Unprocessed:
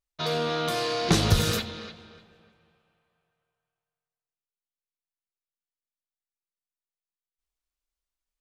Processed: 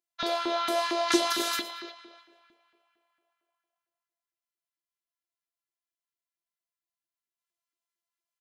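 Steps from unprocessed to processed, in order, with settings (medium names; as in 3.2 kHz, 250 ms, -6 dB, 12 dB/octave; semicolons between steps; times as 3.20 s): robot voice 339 Hz; feedback delay 114 ms, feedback 26%, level -14.5 dB; LFO high-pass saw up 4.4 Hz 300–1700 Hz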